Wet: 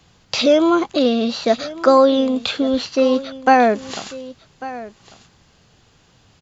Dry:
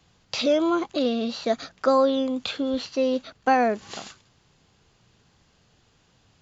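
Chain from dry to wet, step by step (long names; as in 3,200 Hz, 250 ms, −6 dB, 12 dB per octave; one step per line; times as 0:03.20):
single-tap delay 1,146 ms −17 dB
level +7.5 dB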